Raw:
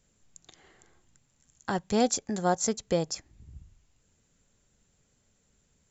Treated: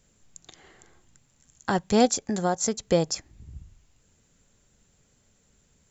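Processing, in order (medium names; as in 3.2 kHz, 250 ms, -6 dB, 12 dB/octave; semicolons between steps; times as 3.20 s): 2.05–2.83 s: compression 2.5:1, threshold -28 dBFS, peak gain reduction 6 dB; trim +5 dB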